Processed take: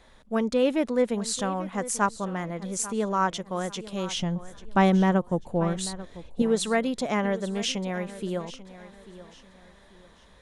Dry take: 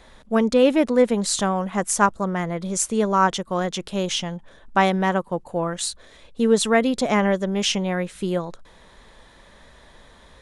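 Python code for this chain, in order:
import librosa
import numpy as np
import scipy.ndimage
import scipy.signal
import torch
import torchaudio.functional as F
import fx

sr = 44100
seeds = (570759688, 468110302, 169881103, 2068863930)

y = fx.low_shelf(x, sr, hz=360.0, db=12.0, at=(4.16, 6.42))
y = fx.echo_feedback(y, sr, ms=841, feedback_pct=32, wet_db=-16)
y = y * librosa.db_to_amplitude(-6.5)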